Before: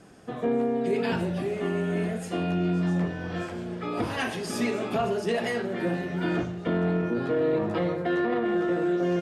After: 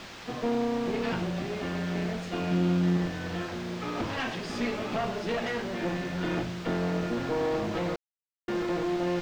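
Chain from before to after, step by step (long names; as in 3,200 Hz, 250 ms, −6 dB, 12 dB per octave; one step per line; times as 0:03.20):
high-shelf EQ 4,500 Hz +11.5 dB
notch filter 400 Hz, Q 12
asymmetric clip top −33 dBFS
0:02.51–0:02.97: hollow resonant body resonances 230/3,300 Hz, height 13 dB, ringing for 65 ms
bit-depth reduction 6 bits, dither triangular
high-frequency loss of the air 190 metres
0:07.96–0:08.48: silence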